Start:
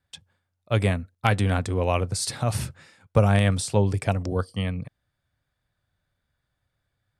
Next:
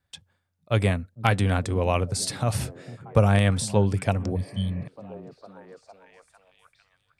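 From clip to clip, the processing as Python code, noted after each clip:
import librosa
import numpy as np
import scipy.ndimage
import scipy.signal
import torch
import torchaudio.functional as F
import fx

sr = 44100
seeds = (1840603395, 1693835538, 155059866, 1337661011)

y = fx.echo_stepped(x, sr, ms=452, hz=180.0, octaves=0.7, feedback_pct=70, wet_db=-11.5)
y = fx.spec_repair(y, sr, seeds[0], start_s=4.38, length_s=0.44, low_hz=260.0, high_hz=3000.0, source='after')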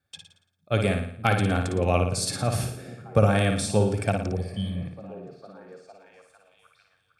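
y = fx.notch_comb(x, sr, f0_hz=980.0)
y = fx.room_flutter(y, sr, wall_m=9.7, rt60_s=0.58)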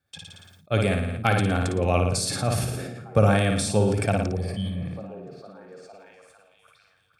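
y = fx.sustainer(x, sr, db_per_s=34.0)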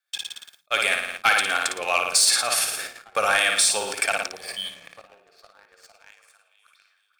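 y = scipy.signal.sosfilt(scipy.signal.butter(2, 1400.0, 'highpass', fs=sr, output='sos'), x)
y = fx.leveller(y, sr, passes=2)
y = y * librosa.db_to_amplitude(4.0)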